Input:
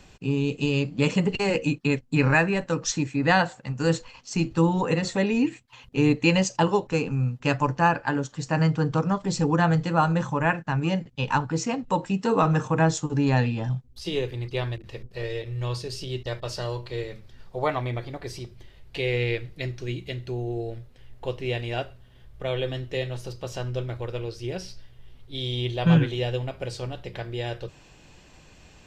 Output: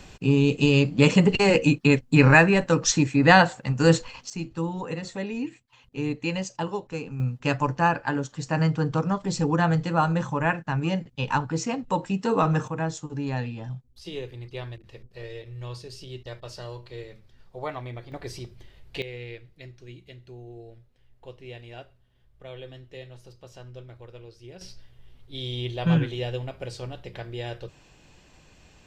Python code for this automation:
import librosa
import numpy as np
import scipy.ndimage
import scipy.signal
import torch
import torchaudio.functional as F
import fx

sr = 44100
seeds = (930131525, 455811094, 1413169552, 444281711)

y = fx.gain(x, sr, db=fx.steps((0.0, 5.0), (4.3, -8.0), (7.2, -1.0), (12.68, -7.5), (18.12, -1.0), (19.02, -13.0), (24.61, -3.0)))